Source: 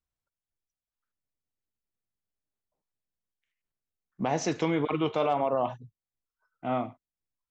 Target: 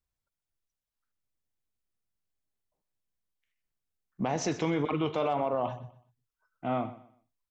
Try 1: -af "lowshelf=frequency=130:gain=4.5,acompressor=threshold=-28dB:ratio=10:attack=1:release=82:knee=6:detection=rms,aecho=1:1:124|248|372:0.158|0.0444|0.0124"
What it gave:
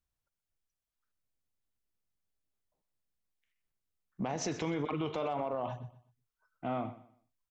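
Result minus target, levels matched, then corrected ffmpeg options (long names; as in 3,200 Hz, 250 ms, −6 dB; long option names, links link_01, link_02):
downward compressor: peak gain reduction +6.5 dB
-af "lowshelf=frequency=130:gain=4.5,acompressor=threshold=-20.5dB:ratio=10:attack=1:release=82:knee=6:detection=rms,aecho=1:1:124|248|372:0.158|0.0444|0.0124"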